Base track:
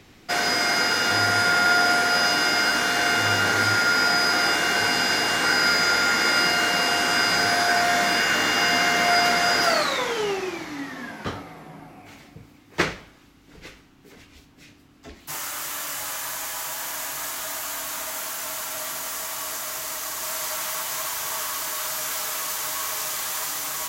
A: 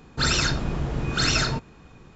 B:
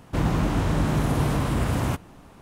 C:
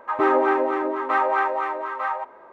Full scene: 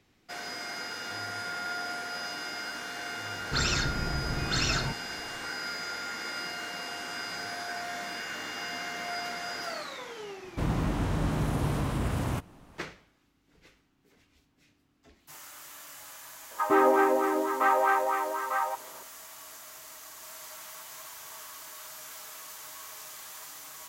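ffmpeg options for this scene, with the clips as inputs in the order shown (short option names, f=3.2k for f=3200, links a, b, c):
-filter_complex "[0:a]volume=-16dB[a];[1:a]atrim=end=2.15,asetpts=PTS-STARTPTS,volume=-6dB,afade=t=in:d=0.004:c=hsin,afade=t=out:st=2.146:d=0.004:c=hsin,adelay=3340[b];[2:a]atrim=end=2.41,asetpts=PTS-STARTPTS,volume=-6dB,afade=t=in:d=0.004:c=hsin,afade=t=out:st=2.406:d=0.004:c=hsin,adelay=10440[c];[3:a]atrim=end=2.52,asetpts=PTS-STARTPTS,volume=-3dB,afade=t=in:d=0.004:c=hsin,afade=t=out:st=2.516:d=0.004:c=hsin,adelay=16510[d];[a][b][c][d]amix=inputs=4:normalize=0"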